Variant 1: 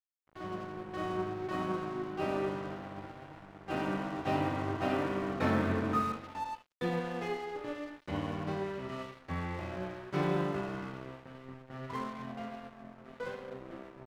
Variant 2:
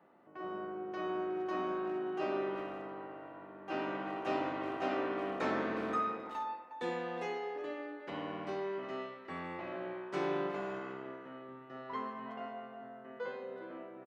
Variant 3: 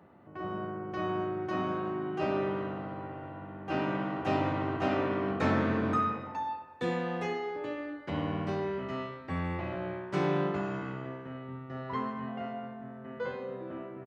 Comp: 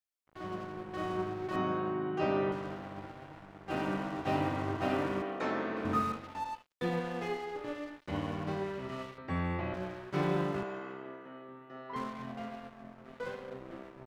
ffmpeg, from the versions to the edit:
-filter_complex "[2:a]asplit=2[a][b];[1:a]asplit=2[c][d];[0:a]asplit=5[e][f][g][h][i];[e]atrim=end=1.562[j];[a]atrim=start=1.558:end=2.522[k];[f]atrim=start=2.518:end=5.222[l];[c]atrim=start=5.218:end=5.852[m];[g]atrim=start=5.848:end=9.182[n];[b]atrim=start=9.178:end=9.742[o];[h]atrim=start=9.738:end=10.632[p];[d]atrim=start=10.628:end=11.962[q];[i]atrim=start=11.958[r];[j][k]acrossfade=d=0.004:c1=hsin:c2=hsin[s];[s][l]acrossfade=d=0.004:c1=hsin:c2=hsin[t];[t][m]acrossfade=d=0.004:c1=hsin:c2=hsin[u];[u][n]acrossfade=d=0.004:c1=hsin:c2=hsin[v];[v][o]acrossfade=d=0.004:c1=hsin:c2=hsin[w];[w][p]acrossfade=d=0.004:c1=hsin:c2=hsin[x];[x][q]acrossfade=d=0.004:c1=hsin:c2=hsin[y];[y][r]acrossfade=d=0.004:c1=hsin:c2=hsin"

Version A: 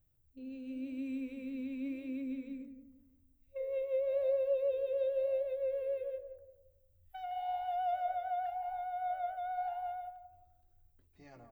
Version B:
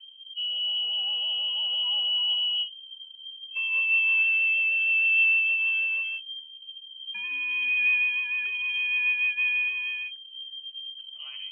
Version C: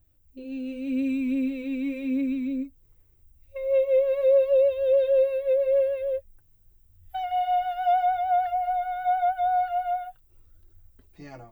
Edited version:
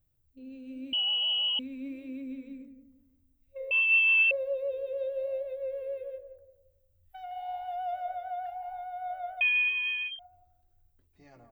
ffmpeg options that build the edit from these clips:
-filter_complex "[1:a]asplit=3[a][b][c];[0:a]asplit=4[d][e][f][g];[d]atrim=end=0.932[h];[a]atrim=start=0.928:end=1.592[i];[e]atrim=start=1.588:end=3.712[j];[b]atrim=start=3.708:end=4.312[k];[f]atrim=start=4.308:end=9.412[l];[c]atrim=start=9.408:end=10.192[m];[g]atrim=start=10.188[n];[h][i]acrossfade=d=0.004:c1=hsin:c2=hsin[o];[o][j]acrossfade=d=0.004:c1=hsin:c2=hsin[p];[p][k]acrossfade=d=0.004:c1=hsin:c2=hsin[q];[q][l]acrossfade=d=0.004:c1=hsin:c2=hsin[r];[r][m]acrossfade=d=0.004:c1=hsin:c2=hsin[s];[s][n]acrossfade=d=0.004:c1=hsin:c2=hsin"

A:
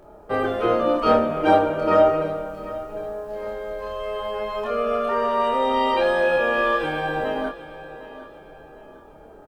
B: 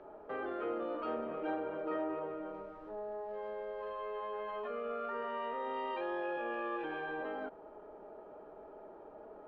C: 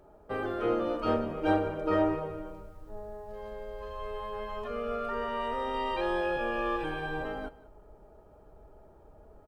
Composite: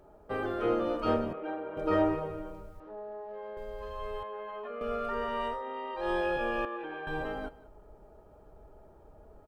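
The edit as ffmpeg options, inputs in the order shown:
-filter_complex "[1:a]asplit=5[a][b][c][d][e];[2:a]asplit=6[f][g][h][i][j][k];[f]atrim=end=1.332[l];[a]atrim=start=1.328:end=1.772[m];[g]atrim=start=1.768:end=2.802[n];[b]atrim=start=2.798:end=3.572[o];[h]atrim=start=3.568:end=4.232[p];[c]atrim=start=4.228:end=4.812[q];[i]atrim=start=4.808:end=5.63[r];[d]atrim=start=5.47:end=6.1[s];[j]atrim=start=5.94:end=6.652[t];[e]atrim=start=6.648:end=7.072[u];[k]atrim=start=7.068[v];[l][m]acrossfade=d=0.004:c1=hsin:c2=hsin[w];[w][n]acrossfade=d=0.004:c1=hsin:c2=hsin[x];[x][o]acrossfade=d=0.004:c1=hsin:c2=hsin[y];[y][p]acrossfade=d=0.004:c1=hsin:c2=hsin[z];[z][q]acrossfade=d=0.004:c1=hsin:c2=hsin[aa];[aa][r]acrossfade=d=0.004:c1=hsin:c2=hsin[ab];[ab][s]acrossfade=d=0.16:c1=tri:c2=tri[ac];[ac][t]acrossfade=d=0.16:c1=tri:c2=tri[ad];[ad][u]acrossfade=d=0.004:c1=hsin:c2=hsin[ae];[ae][v]acrossfade=d=0.004:c1=hsin:c2=hsin"

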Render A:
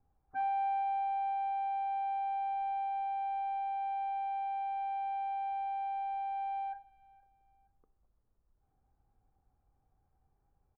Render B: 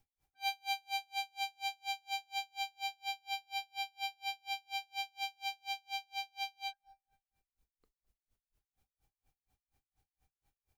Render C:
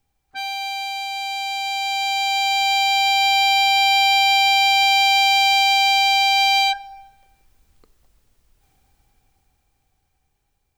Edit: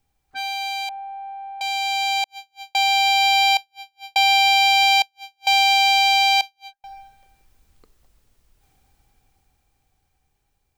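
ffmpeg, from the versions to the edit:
-filter_complex "[1:a]asplit=4[a][b][c][d];[2:a]asplit=6[e][f][g][h][i][j];[e]atrim=end=0.892[k];[0:a]atrim=start=0.888:end=1.612[l];[f]atrim=start=1.608:end=2.242[m];[a]atrim=start=2.238:end=2.752[n];[g]atrim=start=2.748:end=3.572[o];[b]atrim=start=3.568:end=4.162[p];[h]atrim=start=4.158:end=5.022[q];[c]atrim=start=5.018:end=5.472[r];[i]atrim=start=5.468:end=6.412[s];[d]atrim=start=6.408:end=6.842[t];[j]atrim=start=6.838[u];[k][l]acrossfade=d=0.004:c1=hsin:c2=hsin[v];[v][m]acrossfade=d=0.004:c1=hsin:c2=hsin[w];[w][n]acrossfade=d=0.004:c1=hsin:c2=hsin[x];[x][o]acrossfade=d=0.004:c1=hsin:c2=hsin[y];[y][p]acrossfade=d=0.004:c1=hsin:c2=hsin[z];[z][q]acrossfade=d=0.004:c1=hsin:c2=hsin[aa];[aa][r]acrossfade=d=0.004:c1=hsin:c2=hsin[ab];[ab][s]acrossfade=d=0.004:c1=hsin:c2=hsin[ac];[ac][t]acrossfade=d=0.004:c1=hsin:c2=hsin[ad];[ad][u]acrossfade=d=0.004:c1=hsin:c2=hsin"

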